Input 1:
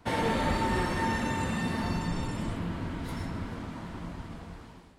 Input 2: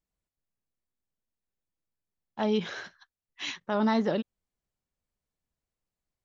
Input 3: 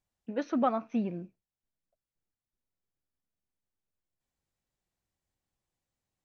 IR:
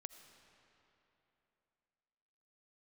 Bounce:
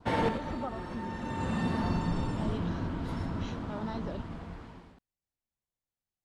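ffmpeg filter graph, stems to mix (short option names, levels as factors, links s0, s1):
-filter_complex "[0:a]aemphasis=mode=reproduction:type=50fm,volume=1,asplit=2[s0][s1];[s1]volume=0.178[s2];[1:a]volume=0.224[s3];[2:a]volume=0.282,asplit=2[s4][s5];[s5]apad=whole_len=219844[s6];[s0][s6]sidechaincompress=threshold=0.00224:ratio=4:attack=10:release=459[s7];[3:a]atrim=start_sample=2205[s8];[s2][s8]afir=irnorm=-1:irlink=0[s9];[s7][s3][s4][s9]amix=inputs=4:normalize=0,adynamicequalizer=threshold=0.00178:dfrequency=2100:dqfactor=2.2:tfrequency=2100:tqfactor=2.2:attack=5:release=100:ratio=0.375:range=3:mode=cutabove:tftype=bell"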